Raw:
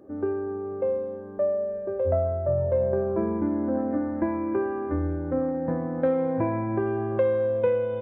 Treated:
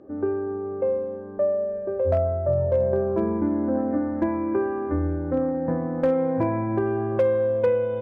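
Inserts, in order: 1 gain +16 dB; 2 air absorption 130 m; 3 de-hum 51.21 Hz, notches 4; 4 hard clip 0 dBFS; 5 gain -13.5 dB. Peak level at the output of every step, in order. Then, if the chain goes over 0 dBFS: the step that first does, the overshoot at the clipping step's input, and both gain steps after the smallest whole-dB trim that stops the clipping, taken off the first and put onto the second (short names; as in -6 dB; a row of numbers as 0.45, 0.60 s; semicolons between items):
+4.0, +3.5, +3.5, 0.0, -13.5 dBFS; step 1, 3.5 dB; step 1 +12 dB, step 5 -9.5 dB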